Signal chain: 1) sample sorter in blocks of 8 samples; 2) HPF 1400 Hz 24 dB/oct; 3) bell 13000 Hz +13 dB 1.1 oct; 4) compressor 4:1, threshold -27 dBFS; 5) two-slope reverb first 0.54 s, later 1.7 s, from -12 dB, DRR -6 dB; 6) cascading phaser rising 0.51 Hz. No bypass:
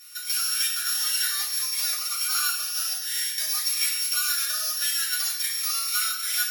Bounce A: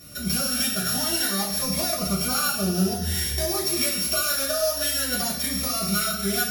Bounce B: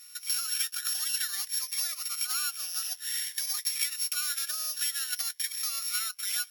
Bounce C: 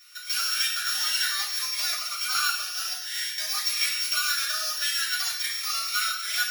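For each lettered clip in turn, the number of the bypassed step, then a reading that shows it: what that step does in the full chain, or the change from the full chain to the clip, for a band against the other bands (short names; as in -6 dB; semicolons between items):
2, 1 kHz band +6.5 dB; 5, crest factor change +4.0 dB; 3, 8 kHz band -8.0 dB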